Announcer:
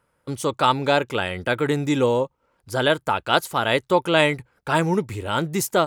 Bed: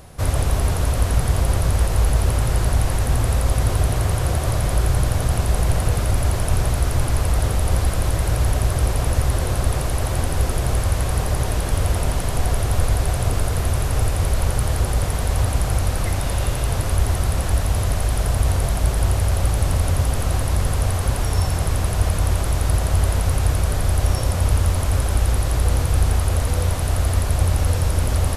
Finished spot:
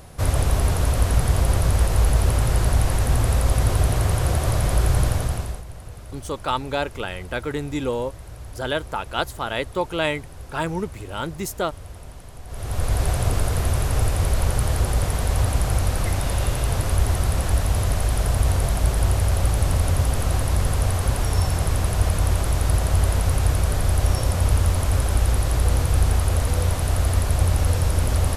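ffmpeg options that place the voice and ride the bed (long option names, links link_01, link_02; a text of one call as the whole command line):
ffmpeg -i stem1.wav -i stem2.wav -filter_complex "[0:a]adelay=5850,volume=-5.5dB[link_01];[1:a]volume=17.5dB,afade=type=out:start_time=5.05:duration=0.58:silence=0.11885,afade=type=in:start_time=12.47:duration=0.57:silence=0.125893[link_02];[link_01][link_02]amix=inputs=2:normalize=0" out.wav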